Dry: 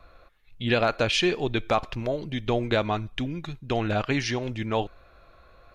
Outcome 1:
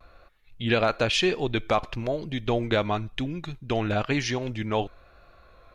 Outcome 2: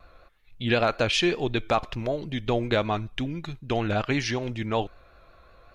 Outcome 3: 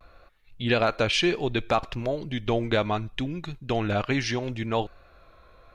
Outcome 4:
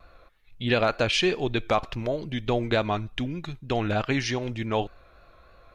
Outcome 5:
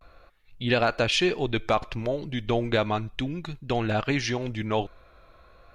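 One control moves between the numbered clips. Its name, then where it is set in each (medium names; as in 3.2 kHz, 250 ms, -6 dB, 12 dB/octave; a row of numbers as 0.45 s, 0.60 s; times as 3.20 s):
vibrato, rate: 1 Hz, 5.3 Hz, 0.68 Hz, 3.3 Hz, 0.35 Hz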